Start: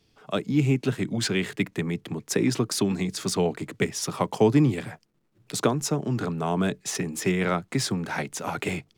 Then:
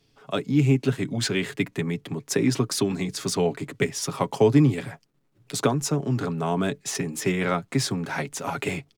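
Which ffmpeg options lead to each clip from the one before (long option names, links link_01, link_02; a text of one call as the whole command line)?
ffmpeg -i in.wav -af "aecho=1:1:7.3:0.4" out.wav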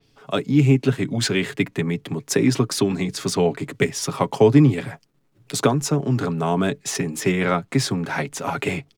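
ffmpeg -i in.wav -af "adynamicequalizer=threshold=0.00708:dfrequency=4400:dqfactor=0.7:tfrequency=4400:tqfactor=0.7:attack=5:release=100:ratio=0.375:range=2.5:mode=cutabove:tftype=highshelf,volume=4dB" out.wav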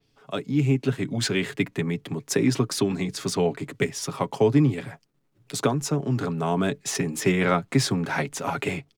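ffmpeg -i in.wav -af "dynaudnorm=framelen=370:gausssize=5:maxgain=11.5dB,volume=-7dB" out.wav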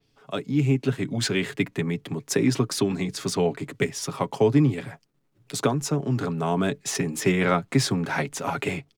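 ffmpeg -i in.wav -af anull out.wav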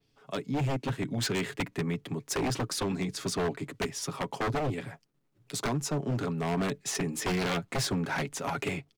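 ffmpeg -i in.wav -af "aeval=exprs='0.106*(abs(mod(val(0)/0.106+3,4)-2)-1)':channel_layout=same,volume=-4dB" out.wav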